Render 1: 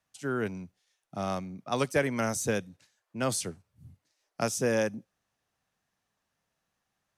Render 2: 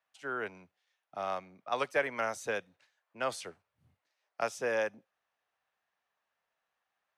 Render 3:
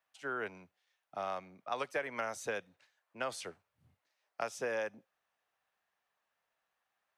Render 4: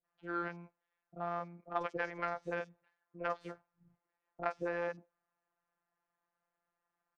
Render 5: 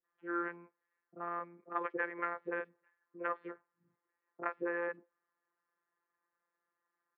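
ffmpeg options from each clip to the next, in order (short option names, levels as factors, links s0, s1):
-filter_complex "[0:a]acrossover=split=470 3600:gain=0.112 1 0.178[s0][s1][s2];[s0][s1][s2]amix=inputs=3:normalize=0"
-af "acompressor=threshold=0.0224:ratio=4"
-filter_complex "[0:a]afftfilt=real='hypot(re,im)*cos(PI*b)':imag='0':win_size=1024:overlap=0.75,adynamicsmooth=sensitivity=1.5:basefreq=1200,acrossover=split=500|4800[s0][s1][s2];[s1]adelay=40[s3];[s2]adelay=90[s4];[s0][s3][s4]amix=inputs=3:normalize=0,volume=2.51"
-af "highpass=160,equalizer=f=170:t=q:w=4:g=-7,equalizer=f=260:t=q:w=4:g=6,equalizer=f=400:t=q:w=4:g=10,equalizer=f=720:t=q:w=4:g=-8,equalizer=f=1100:t=q:w=4:g=6,equalizer=f=1800:t=q:w=4:g=7,lowpass=f=2400:w=0.5412,lowpass=f=2400:w=1.3066,volume=0.794"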